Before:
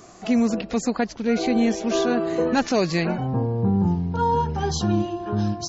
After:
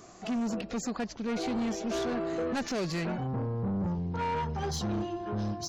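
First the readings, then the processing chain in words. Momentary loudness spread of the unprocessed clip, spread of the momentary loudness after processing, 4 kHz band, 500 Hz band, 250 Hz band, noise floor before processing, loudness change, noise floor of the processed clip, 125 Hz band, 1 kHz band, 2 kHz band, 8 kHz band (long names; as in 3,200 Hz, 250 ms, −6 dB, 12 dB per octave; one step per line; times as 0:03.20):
4 LU, 3 LU, −8.0 dB, −10.0 dB, −10.0 dB, −43 dBFS, −9.5 dB, −49 dBFS, −9.0 dB, −9.5 dB, −9.0 dB, can't be measured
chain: soft clipping −22.5 dBFS, distortion −10 dB
level −5 dB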